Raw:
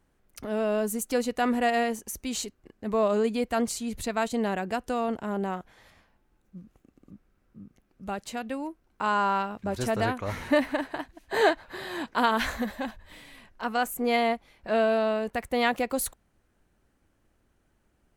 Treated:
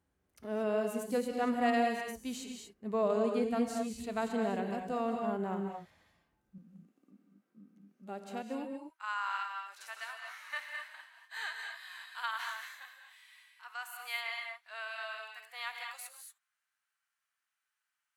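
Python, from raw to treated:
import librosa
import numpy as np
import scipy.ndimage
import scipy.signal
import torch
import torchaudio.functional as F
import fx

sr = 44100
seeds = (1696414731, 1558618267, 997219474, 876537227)

y = fx.highpass(x, sr, hz=fx.steps((0.0, 46.0), (6.58, 200.0), (8.65, 1200.0)), slope=24)
y = fx.hpss(y, sr, part='percussive', gain_db=-11)
y = fx.rev_gated(y, sr, seeds[0], gate_ms=260, shape='rising', drr_db=3.0)
y = y * 10.0 ** (-6.0 / 20.0)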